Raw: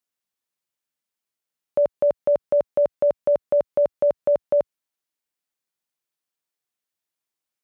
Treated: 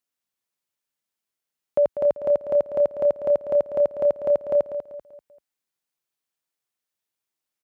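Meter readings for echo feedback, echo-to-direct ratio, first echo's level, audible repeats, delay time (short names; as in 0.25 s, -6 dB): 38%, -9.5 dB, -10.0 dB, 3, 0.194 s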